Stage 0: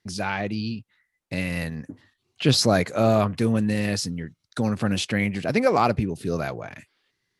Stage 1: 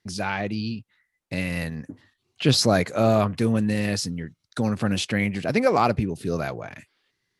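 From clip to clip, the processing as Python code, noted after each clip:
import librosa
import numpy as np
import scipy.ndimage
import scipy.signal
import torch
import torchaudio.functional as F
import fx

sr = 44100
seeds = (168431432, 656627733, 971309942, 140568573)

y = x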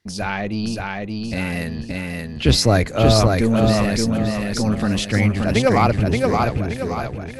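y = fx.octave_divider(x, sr, octaves=1, level_db=-1.0)
y = fx.echo_feedback(y, sr, ms=575, feedback_pct=41, wet_db=-3.0)
y = y * 10.0 ** (2.5 / 20.0)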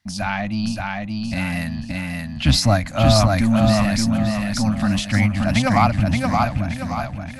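y = scipy.signal.sosfilt(scipy.signal.cheby1(2, 1.0, [260.0, 660.0], 'bandstop', fs=sr, output='sos'), x)
y = fx.end_taper(y, sr, db_per_s=130.0)
y = y * 10.0 ** (1.5 / 20.0)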